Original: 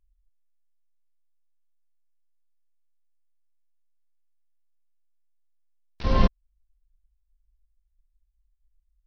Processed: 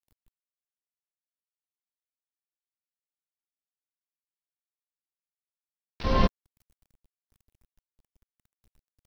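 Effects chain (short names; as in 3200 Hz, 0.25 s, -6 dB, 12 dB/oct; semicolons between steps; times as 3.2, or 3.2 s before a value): low shelf 150 Hz -6 dB; bit-crush 11-bit; gain +1 dB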